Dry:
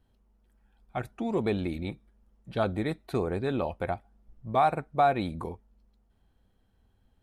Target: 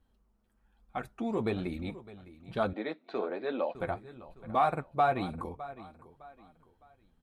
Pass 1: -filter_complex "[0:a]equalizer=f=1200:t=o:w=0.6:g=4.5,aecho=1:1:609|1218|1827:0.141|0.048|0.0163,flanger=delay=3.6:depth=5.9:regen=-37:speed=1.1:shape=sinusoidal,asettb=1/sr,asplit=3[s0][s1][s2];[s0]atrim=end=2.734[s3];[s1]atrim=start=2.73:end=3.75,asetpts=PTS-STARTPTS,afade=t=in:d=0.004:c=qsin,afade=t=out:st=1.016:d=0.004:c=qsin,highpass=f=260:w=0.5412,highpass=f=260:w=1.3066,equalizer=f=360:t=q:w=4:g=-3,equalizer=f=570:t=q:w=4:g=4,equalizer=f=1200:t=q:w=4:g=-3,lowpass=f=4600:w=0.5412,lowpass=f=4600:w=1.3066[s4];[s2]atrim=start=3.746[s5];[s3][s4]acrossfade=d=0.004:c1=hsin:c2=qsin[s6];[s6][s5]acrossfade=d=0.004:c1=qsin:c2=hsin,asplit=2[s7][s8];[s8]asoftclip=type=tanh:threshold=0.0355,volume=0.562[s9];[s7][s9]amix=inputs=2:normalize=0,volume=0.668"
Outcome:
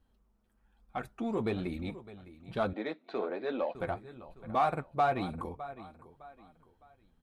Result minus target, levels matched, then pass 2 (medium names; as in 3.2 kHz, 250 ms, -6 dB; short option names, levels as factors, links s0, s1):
saturation: distortion +11 dB
-filter_complex "[0:a]equalizer=f=1200:t=o:w=0.6:g=4.5,aecho=1:1:609|1218|1827:0.141|0.048|0.0163,flanger=delay=3.6:depth=5.9:regen=-37:speed=1.1:shape=sinusoidal,asettb=1/sr,asplit=3[s0][s1][s2];[s0]atrim=end=2.734[s3];[s1]atrim=start=2.73:end=3.75,asetpts=PTS-STARTPTS,afade=t=in:d=0.004:c=qsin,afade=t=out:st=1.016:d=0.004:c=qsin,highpass=f=260:w=0.5412,highpass=f=260:w=1.3066,equalizer=f=360:t=q:w=4:g=-3,equalizer=f=570:t=q:w=4:g=4,equalizer=f=1200:t=q:w=4:g=-3,lowpass=f=4600:w=0.5412,lowpass=f=4600:w=1.3066[s4];[s2]atrim=start=3.746[s5];[s3][s4]acrossfade=d=0.004:c1=hsin:c2=qsin[s6];[s6][s5]acrossfade=d=0.004:c1=qsin:c2=hsin,asplit=2[s7][s8];[s8]asoftclip=type=tanh:threshold=0.119,volume=0.562[s9];[s7][s9]amix=inputs=2:normalize=0,volume=0.668"